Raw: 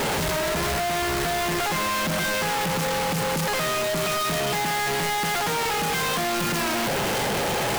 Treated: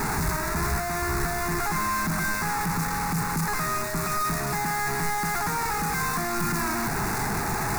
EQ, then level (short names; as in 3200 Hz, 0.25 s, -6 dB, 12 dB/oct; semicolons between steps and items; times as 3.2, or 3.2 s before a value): low shelf 67 Hz +10 dB; bell 510 Hz +4.5 dB 1.1 oct; fixed phaser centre 1300 Hz, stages 4; 0.0 dB